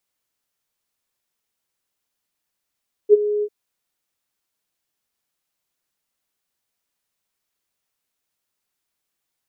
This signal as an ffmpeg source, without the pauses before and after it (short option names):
-f lavfi -i "aevalsrc='0.596*sin(2*PI*417*t)':d=0.396:s=44100,afade=t=in:d=0.044,afade=t=out:st=0.044:d=0.024:silence=0.2,afade=t=out:st=0.34:d=0.056"